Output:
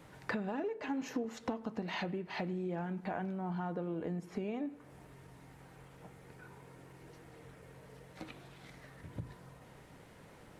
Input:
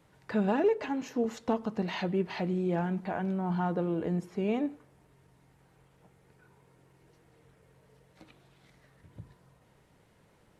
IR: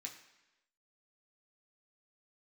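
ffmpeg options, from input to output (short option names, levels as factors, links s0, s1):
-filter_complex "[0:a]acompressor=threshold=0.00794:ratio=16,asplit=2[s0][s1];[1:a]atrim=start_sample=2205,lowpass=2800[s2];[s1][s2]afir=irnorm=-1:irlink=0,volume=0.473[s3];[s0][s3]amix=inputs=2:normalize=0,volume=2.24"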